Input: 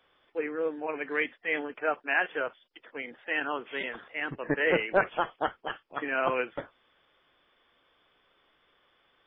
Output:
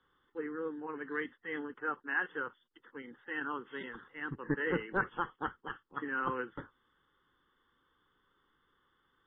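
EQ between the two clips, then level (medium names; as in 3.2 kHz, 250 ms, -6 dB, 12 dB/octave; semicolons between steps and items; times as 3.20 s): distance through air 68 m; treble shelf 2.2 kHz -10.5 dB; static phaser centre 2.4 kHz, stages 6; 0.0 dB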